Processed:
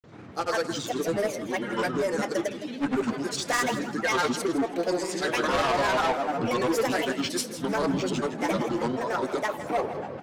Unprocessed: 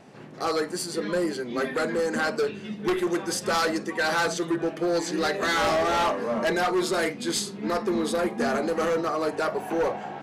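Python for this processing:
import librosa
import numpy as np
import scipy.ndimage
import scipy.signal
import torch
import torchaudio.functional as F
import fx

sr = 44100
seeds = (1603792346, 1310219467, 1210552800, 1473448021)

p1 = fx.granulator(x, sr, seeds[0], grain_ms=100.0, per_s=20.0, spray_ms=100.0, spread_st=7)
y = p1 + fx.echo_feedback(p1, sr, ms=162, feedback_pct=24, wet_db=-13, dry=0)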